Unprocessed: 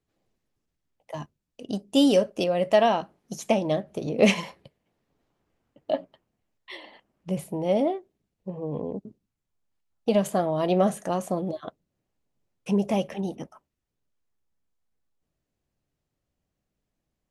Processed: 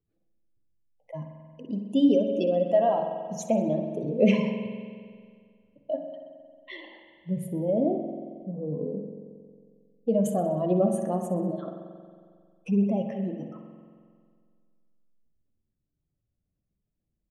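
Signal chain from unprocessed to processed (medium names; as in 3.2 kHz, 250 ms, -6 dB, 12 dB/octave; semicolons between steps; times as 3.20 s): spectral contrast enhancement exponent 1.8; peaking EQ 790 Hz -4 dB 0.81 oct; de-hum 68.98 Hz, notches 36; on a send: feedback delay 63 ms, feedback 53%, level -14.5 dB; on the sum: spring tank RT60 2 s, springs 45 ms, chirp 50 ms, DRR 5.5 dB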